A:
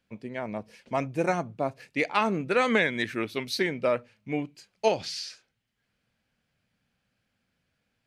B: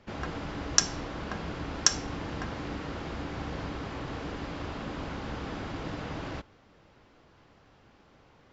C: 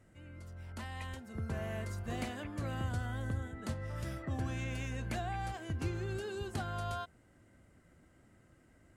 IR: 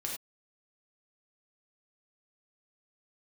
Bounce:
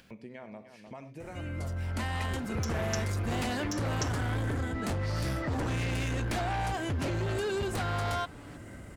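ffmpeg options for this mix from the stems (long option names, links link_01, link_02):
-filter_complex "[0:a]alimiter=level_in=1dB:limit=-24dB:level=0:latency=1:release=345,volume=-1dB,volume=-13.5dB,asplit=3[link_01][link_02][link_03];[link_02]volume=-6dB[link_04];[link_03]volume=-11dB[link_05];[1:a]aecho=1:1:7:0.9,adelay=1850,volume=-13dB,asplit=2[link_06][link_07];[link_07]volume=-4.5dB[link_08];[2:a]aeval=exprs='0.0531*sin(PI/2*2.82*val(0)/0.0531)':channel_layout=same,adelay=1200,volume=1.5dB[link_09];[link_06][link_09]amix=inputs=2:normalize=0,asoftclip=type=tanh:threshold=-22dB,alimiter=level_in=3.5dB:limit=-24dB:level=0:latency=1:release=28,volume=-3.5dB,volume=0dB[link_10];[3:a]atrim=start_sample=2205[link_11];[link_04][link_11]afir=irnorm=-1:irlink=0[link_12];[link_05][link_08]amix=inputs=2:normalize=0,aecho=0:1:302:1[link_13];[link_01][link_10][link_12][link_13]amix=inputs=4:normalize=0,acompressor=mode=upward:threshold=-39dB:ratio=2.5"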